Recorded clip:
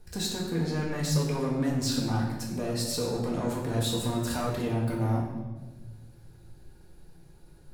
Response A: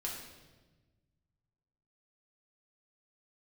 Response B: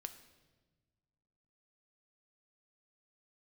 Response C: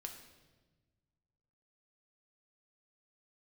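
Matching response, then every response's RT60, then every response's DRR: A; 1.3 s, non-exponential decay, 1.3 s; −3.0, 8.5, 3.0 decibels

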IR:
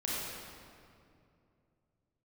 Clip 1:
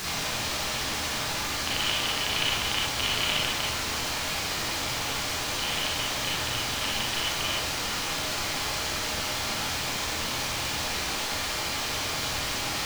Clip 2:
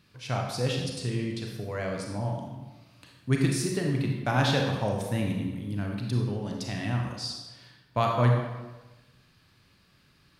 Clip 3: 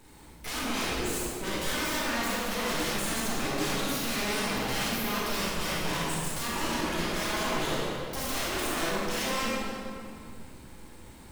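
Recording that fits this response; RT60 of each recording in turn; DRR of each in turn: 3; 0.65, 1.2, 2.5 seconds; −5.5, 0.5, −7.0 decibels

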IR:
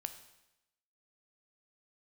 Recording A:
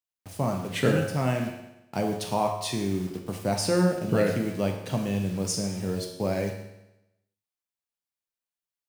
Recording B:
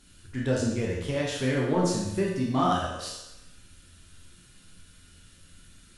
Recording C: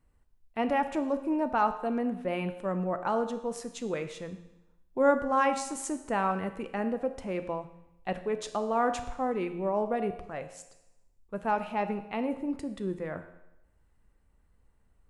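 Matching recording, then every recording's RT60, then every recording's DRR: C; 0.90, 0.90, 0.90 seconds; 2.0, −4.0, 8.5 decibels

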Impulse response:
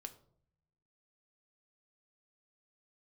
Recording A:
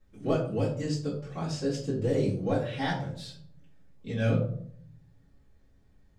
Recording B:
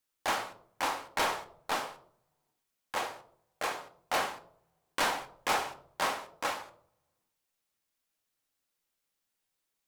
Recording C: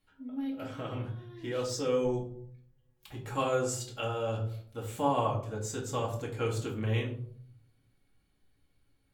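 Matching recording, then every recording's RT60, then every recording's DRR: B; 0.60, 0.65, 0.60 seconds; −10.5, 7.0, −2.5 decibels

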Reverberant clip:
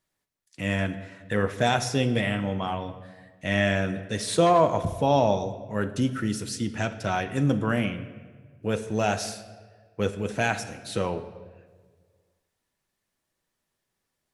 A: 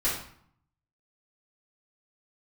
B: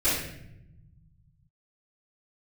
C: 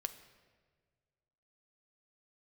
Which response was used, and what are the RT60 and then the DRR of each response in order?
C; 0.60, 0.80, 1.6 seconds; −10.5, −16.5, 8.5 decibels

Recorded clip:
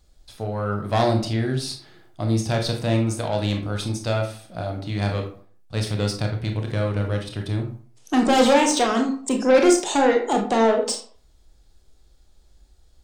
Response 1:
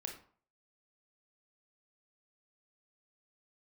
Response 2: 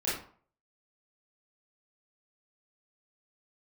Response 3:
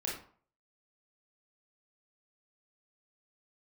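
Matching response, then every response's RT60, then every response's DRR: 1; 0.50, 0.50, 0.50 seconds; 2.5, −9.5, −3.5 decibels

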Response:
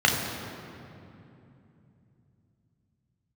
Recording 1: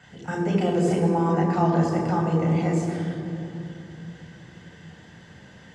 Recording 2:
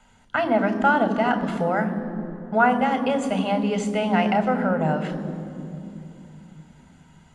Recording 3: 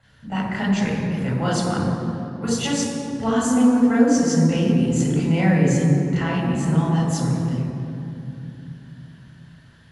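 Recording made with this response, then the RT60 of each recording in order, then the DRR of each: 1; 2.8, 2.8, 2.8 seconds; −1.0, 8.5, −6.5 decibels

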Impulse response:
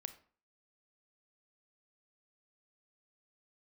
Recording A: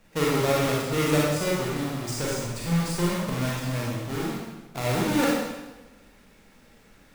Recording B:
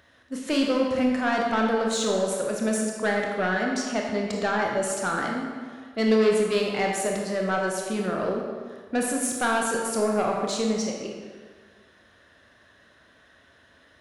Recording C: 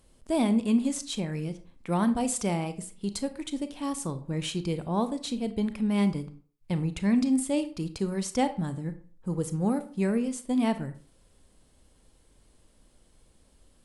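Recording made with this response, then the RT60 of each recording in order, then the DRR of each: C; 1.1, 1.7, 0.45 seconds; −5.5, −0.5, 10.5 decibels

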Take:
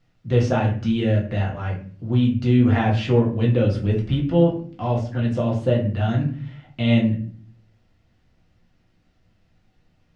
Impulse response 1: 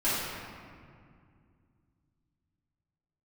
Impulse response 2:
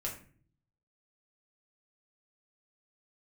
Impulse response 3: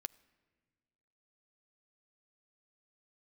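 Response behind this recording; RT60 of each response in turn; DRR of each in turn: 2; 2.2, 0.45, 1.6 seconds; −14.5, −3.0, 16.5 decibels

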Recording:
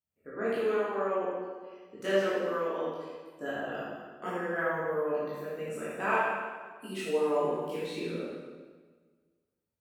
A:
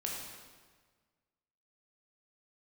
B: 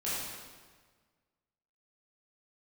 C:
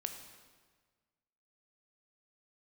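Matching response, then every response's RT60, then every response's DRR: B; 1.5, 1.5, 1.5 seconds; −2.5, −10.5, 5.5 decibels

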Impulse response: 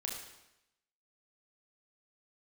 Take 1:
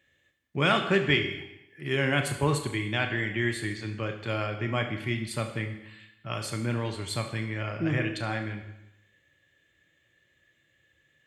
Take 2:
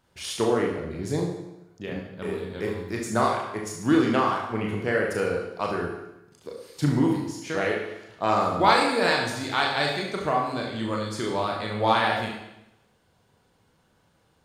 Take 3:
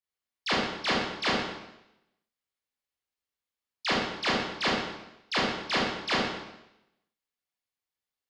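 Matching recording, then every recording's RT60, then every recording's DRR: 2; 0.90, 0.90, 0.90 seconds; 5.0, −1.5, −6.5 decibels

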